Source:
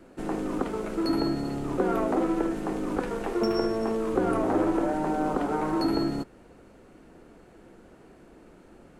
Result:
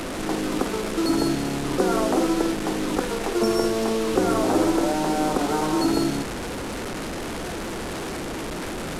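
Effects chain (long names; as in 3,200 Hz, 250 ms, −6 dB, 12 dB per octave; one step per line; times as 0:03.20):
linear delta modulator 64 kbit/s, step −28.5 dBFS
level +4 dB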